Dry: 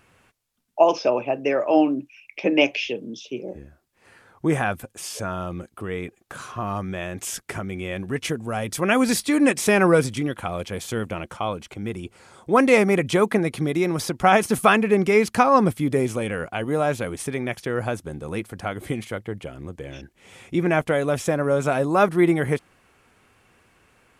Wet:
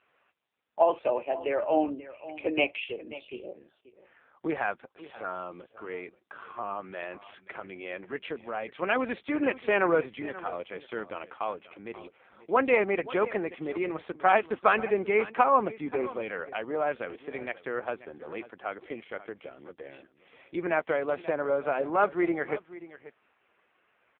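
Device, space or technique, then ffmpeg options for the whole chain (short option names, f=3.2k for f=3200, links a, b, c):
satellite phone: -af "highpass=400,lowpass=3.2k,aecho=1:1:534:0.15,volume=-4dB" -ar 8000 -c:a libopencore_amrnb -b:a 5900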